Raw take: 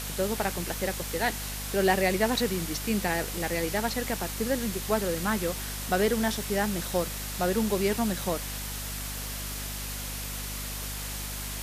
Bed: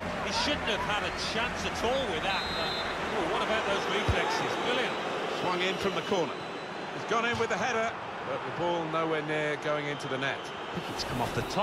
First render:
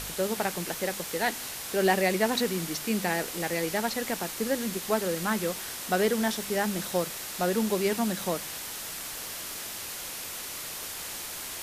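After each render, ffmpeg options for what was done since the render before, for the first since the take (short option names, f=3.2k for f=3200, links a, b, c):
-af "bandreject=f=50:t=h:w=4,bandreject=f=100:t=h:w=4,bandreject=f=150:t=h:w=4,bandreject=f=200:t=h:w=4,bandreject=f=250:t=h:w=4"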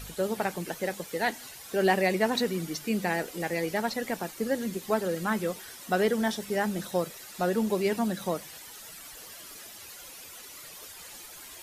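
-af "afftdn=nr=12:nf=-38"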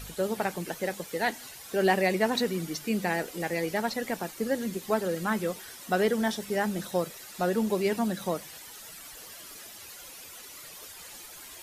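-af anull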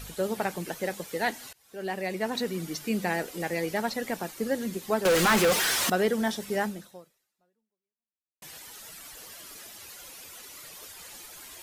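-filter_complex "[0:a]asettb=1/sr,asplit=3[a][b][c];[a]atrim=end=5.054[d];[b]atrim=start=5.05:end=5.9,asetpts=PTS-STARTPTS,afade=t=in:d=0.004:c=qsin,afade=t=out:st=0.846:d=0.004:c=qsin,asplit=2[e][f];[f]highpass=f=720:p=1,volume=34dB,asoftclip=type=tanh:threshold=-14.5dB[g];[e][g]amix=inputs=2:normalize=0,lowpass=f=5.3k:p=1,volume=-6dB[h];[c]atrim=start=5.896[i];[d][h]acrossfade=d=0.004:c1=hsin:c2=qsin[j];[j][i]acrossfade=d=0.004:c1=qsin:c2=hsin,asplit=3[k][l][m];[k]atrim=end=1.53,asetpts=PTS-STARTPTS,afade=t=out:st=1.526:d=0.004:c=hsin:silence=0.0630957[n];[l]atrim=start=1.53:end=8.42,asetpts=PTS-STARTPTS,afade=t=in:d=1.25:silence=0.0630957,afade=t=out:st=5.1:d=1.79:c=exp[o];[m]atrim=start=8.42,asetpts=PTS-STARTPTS,afade=t=in:d=0.004:c=hsin[p];[n][o][p]concat=n=3:v=0:a=1"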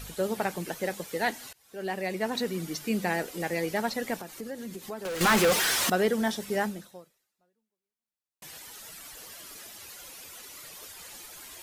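-filter_complex "[0:a]asettb=1/sr,asplit=3[a][b][c];[a]atrim=end=4.194[d];[b]atrim=start=4.19:end=5.21,asetpts=PTS-STARTPTS,afade=t=in:d=0.004:c=qsin,afade=t=out:st=1.016:d=0.004:c=qsin,acompressor=threshold=-38dB:ratio=2.5:attack=3.2:release=140:knee=1:detection=peak[e];[c]atrim=start=5.206[f];[d][e]acrossfade=d=0.004:c1=hsin:c2=qsin[g];[g][f]acrossfade=d=0.004:c1=qsin:c2=hsin"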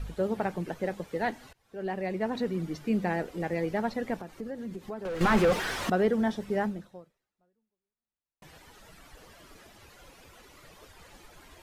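-af "lowpass=f=1.3k:p=1,lowshelf=f=91:g=11.5"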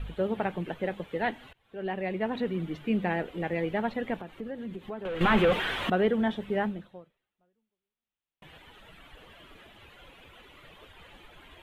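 -af "highshelf=f=4.1k:t=q:w=3:g=-8.5"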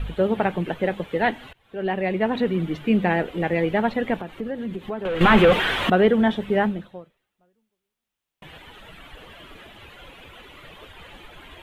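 -af "volume=8dB"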